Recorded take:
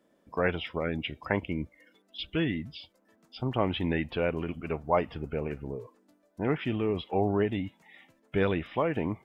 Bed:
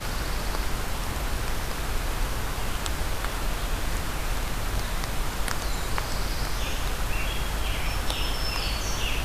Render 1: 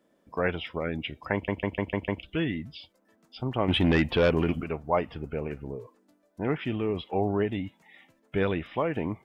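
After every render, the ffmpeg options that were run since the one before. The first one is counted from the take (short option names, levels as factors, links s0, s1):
-filter_complex "[0:a]asettb=1/sr,asplit=3[s0][s1][s2];[s0]atrim=end=3.684[s3];[s1]atrim=start=3.68:end=4.64,asetpts=PTS-STARTPTS,afade=t=in:d=0.004:c=qsin,afade=t=out:st=0.956:d=0.004:c=qsin,aeval=exprs='0.158*sin(PI/2*1.78*val(0)/0.158)':c=same[s4];[s2]atrim=start=4.636[s5];[s3][s4]acrossfade=d=0.004:c1=hsin:c2=qsin[s6];[s6][s5]acrossfade=d=0.004:c1=qsin:c2=hsin,asplit=7[s7][s8][s9][s10][s11][s12][s13];[s7]atrim=end=1.482[s14];[s8]atrim=start=1.328:end=1.482[s15];[s9]atrim=start=1.328:end=1.482[s16];[s10]atrim=start=1.328:end=1.482[s17];[s11]atrim=start=1.328:end=1.482[s18];[s12]atrim=start=1.328:end=1.482[s19];[s13]atrim=start=2.228[s20];[s14][s15]acrossfade=d=0.004:c1=hsin:c2=hsin[s21];[s21][s16]acrossfade=d=0.004:c1=hsin:c2=hsin[s22];[s22][s17]acrossfade=d=0.004:c1=hsin:c2=hsin[s23];[s23][s18]acrossfade=d=0.004:c1=hsin:c2=hsin[s24];[s24][s19]acrossfade=d=0.004:c1=hsin:c2=hsin[s25];[s25][s20]acrossfade=d=0.004:c1=hsin:c2=hsin"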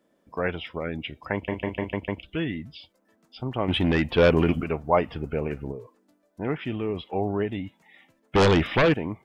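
-filter_complex "[0:a]asettb=1/sr,asplit=3[s0][s1][s2];[s0]atrim=end=1.444[s3];[s1]atrim=start=1.44:end=1.95,asetpts=PTS-STARTPTS,afade=t=in:d=0.004:c=qsin,afade=t=out:st=0.506:d=0.004:c=qsin,asplit=2[s4][s5];[s5]adelay=33,volume=0.447[s6];[s4][s6]amix=inputs=2:normalize=0,atrim=end_sample=22491[s7];[s2]atrim=start=1.946[s8];[s3][s7]acrossfade=d=0.004:c1=hsin:c2=qsin[s9];[s9][s8]acrossfade=d=0.004:c1=qsin:c2=hsin,asettb=1/sr,asplit=3[s10][s11][s12];[s10]atrim=end=8.354[s13];[s11]atrim=start=8.35:end=8.94,asetpts=PTS-STARTPTS,afade=t=in:d=0.004:c=qsin,afade=t=out:st=0.586:d=0.004:c=qsin,aeval=exprs='0.188*sin(PI/2*3.16*val(0)/0.188)':c=same[s14];[s12]atrim=start=8.936[s15];[s13][s14]acrossfade=d=0.004:c1=hsin:c2=qsin[s16];[s16][s15]acrossfade=d=0.004:c1=qsin:c2=hsin,asplit=3[s17][s18][s19];[s17]atrim=end=4.182[s20];[s18]atrim=start=4.178:end=5.722,asetpts=PTS-STARTPTS,volume=1.68[s21];[s19]atrim=start=5.718[s22];[s20][s21]acrossfade=d=0.004:c1=hsin:c2=hsin[s23];[s23][s22]acrossfade=d=0.004:c1=hsin:c2=hsin"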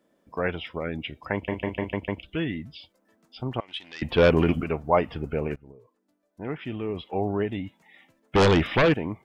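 -filter_complex "[0:a]asettb=1/sr,asplit=3[s0][s1][s2];[s0]atrim=end=3.604[s3];[s1]atrim=start=3.6:end=4.02,asetpts=PTS-STARTPTS,afade=t=in:d=0.004:c=qsin,afade=t=out:st=0.416:d=0.004:c=qsin,bandpass=f=5300:t=q:w=1.7[s4];[s2]atrim=start=4.016[s5];[s3][s4]acrossfade=d=0.004:c1=hsin:c2=qsin[s6];[s6][s5]acrossfade=d=0.004:c1=qsin:c2=hsin,asplit=2[s7][s8];[s7]atrim=end=5.56,asetpts=PTS-STARTPTS,afade=t=out:st=5.556:d=0.004:c=hsin:silence=0.105925[s9];[s8]atrim=start=5.56,asetpts=PTS-STARTPTS,afade=t=in:d=1.69:silence=0.105925[s10];[s9][s10]concat=n=2:v=0:a=1"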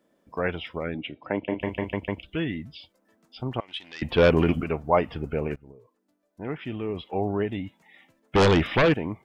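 -filter_complex "[0:a]asettb=1/sr,asplit=3[s0][s1][s2];[s0]atrim=end=0.944[s3];[s1]atrim=start=0.94:end=1.61,asetpts=PTS-STARTPTS,afade=t=in:d=0.004:c=qsin,afade=t=out:st=0.666:d=0.004:c=qsin,highpass=150,equalizer=f=300:t=q:w=4:g=5,equalizer=f=590:t=q:w=4:g=3,equalizer=f=1100:t=q:w=4:g=-5,equalizer=f=1800:t=q:w=4:g=-6,lowpass=f=3600:w=0.5412,lowpass=f=3600:w=1.3066[s4];[s2]atrim=start=1.606[s5];[s3][s4]acrossfade=d=0.004:c1=hsin:c2=qsin[s6];[s6][s5]acrossfade=d=0.004:c1=qsin:c2=hsin"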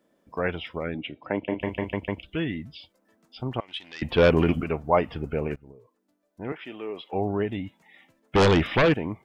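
-filter_complex "[0:a]asettb=1/sr,asplit=3[s0][s1][s2];[s0]atrim=end=6.524[s3];[s1]atrim=start=6.52:end=7.13,asetpts=PTS-STARTPTS,afade=t=in:d=0.004:c=qsin,afade=t=out:st=0.606:d=0.004:c=qsin,highpass=390[s4];[s2]atrim=start=7.126[s5];[s3][s4]acrossfade=d=0.004:c1=hsin:c2=qsin[s6];[s6][s5]acrossfade=d=0.004:c1=qsin:c2=hsin"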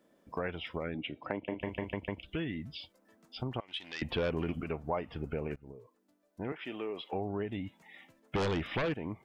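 -af "acompressor=threshold=0.0178:ratio=3"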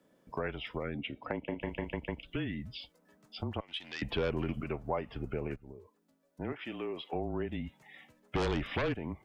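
-af "afreqshift=-27"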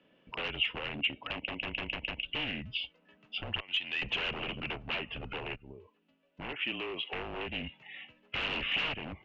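-af "aresample=16000,aeval=exprs='0.0188*(abs(mod(val(0)/0.0188+3,4)-2)-1)':c=same,aresample=44100,lowpass=f=2800:t=q:w=7.9"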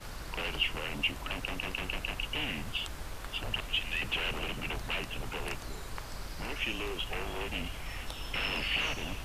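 -filter_complex "[1:a]volume=0.224[s0];[0:a][s0]amix=inputs=2:normalize=0"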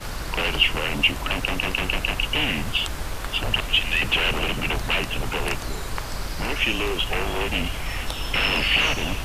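-af "volume=3.76"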